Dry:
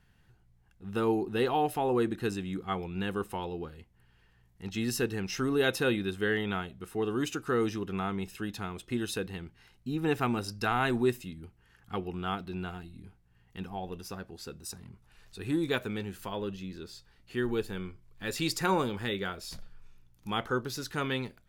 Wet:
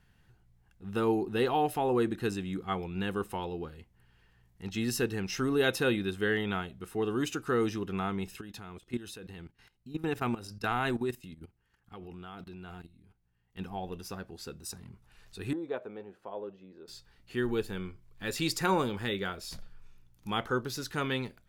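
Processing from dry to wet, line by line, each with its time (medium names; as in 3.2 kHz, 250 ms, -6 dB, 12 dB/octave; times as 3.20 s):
8.41–13.59 s: level held to a coarse grid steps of 15 dB
15.53–16.88 s: band-pass filter 600 Hz, Q 1.7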